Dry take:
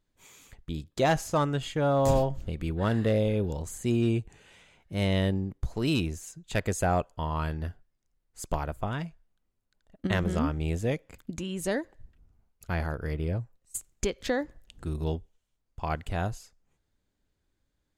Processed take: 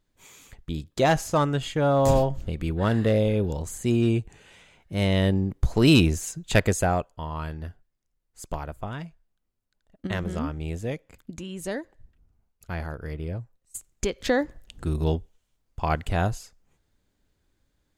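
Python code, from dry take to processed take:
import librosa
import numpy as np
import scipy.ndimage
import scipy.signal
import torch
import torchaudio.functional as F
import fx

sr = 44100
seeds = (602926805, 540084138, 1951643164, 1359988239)

y = fx.gain(x, sr, db=fx.line((5.16, 3.5), (5.8, 10.0), (6.51, 10.0), (7.11, -2.0), (13.76, -2.0), (14.36, 6.0)))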